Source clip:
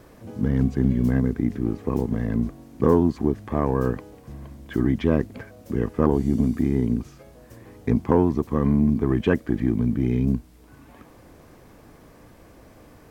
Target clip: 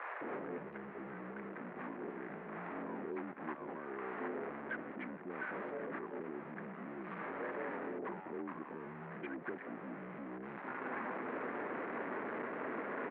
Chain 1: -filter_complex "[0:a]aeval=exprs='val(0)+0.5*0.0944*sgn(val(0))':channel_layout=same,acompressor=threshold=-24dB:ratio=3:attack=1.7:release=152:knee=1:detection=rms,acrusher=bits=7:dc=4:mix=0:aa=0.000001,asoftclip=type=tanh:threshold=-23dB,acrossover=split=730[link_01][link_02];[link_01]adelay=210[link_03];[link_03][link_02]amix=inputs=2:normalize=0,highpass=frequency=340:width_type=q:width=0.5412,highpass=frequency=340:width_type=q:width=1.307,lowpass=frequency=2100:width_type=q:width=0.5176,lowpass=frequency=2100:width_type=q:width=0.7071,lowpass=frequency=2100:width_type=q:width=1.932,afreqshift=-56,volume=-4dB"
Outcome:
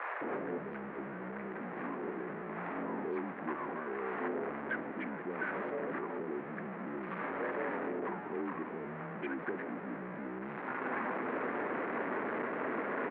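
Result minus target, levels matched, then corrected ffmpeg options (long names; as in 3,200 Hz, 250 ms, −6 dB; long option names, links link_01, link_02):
downward compressor: peak gain reduction −7 dB
-filter_complex "[0:a]aeval=exprs='val(0)+0.5*0.0944*sgn(val(0))':channel_layout=same,acompressor=threshold=-34.5dB:ratio=3:attack=1.7:release=152:knee=1:detection=rms,acrusher=bits=7:dc=4:mix=0:aa=0.000001,asoftclip=type=tanh:threshold=-23dB,acrossover=split=730[link_01][link_02];[link_01]adelay=210[link_03];[link_03][link_02]amix=inputs=2:normalize=0,highpass=frequency=340:width_type=q:width=0.5412,highpass=frequency=340:width_type=q:width=1.307,lowpass=frequency=2100:width_type=q:width=0.5176,lowpass=frequency=2100:width_type=q:width=0.7071,lowpass=frequency=2100:width_type=q:width=1.932,afreqshift=-56,volume=-4dB"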